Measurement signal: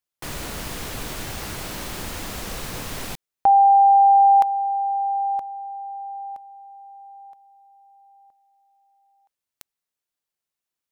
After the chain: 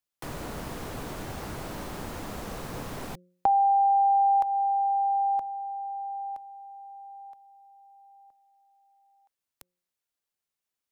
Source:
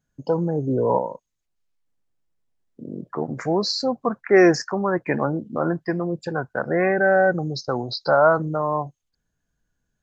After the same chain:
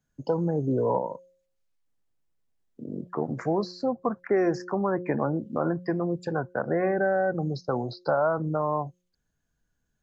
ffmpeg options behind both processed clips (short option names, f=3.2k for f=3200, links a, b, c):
-filter_complex "[0:a]bandreject=f=178.9:t=h:w=4,bandreject=f=357.8:t=h:w=4,bandreject=f=536.7:t=h:w=4,acrossover=split=96|1400[a][b][c];[a]acompressor=threshold=-40dB:ratio=4[d];[b]acompressor=threshold=-20dB:ratio=4[e];[c]acompressor=threshold=-45dB:ratio=4[f];[d][e][f]amix=inputs=3:normalize=0,volume=-1.5dB"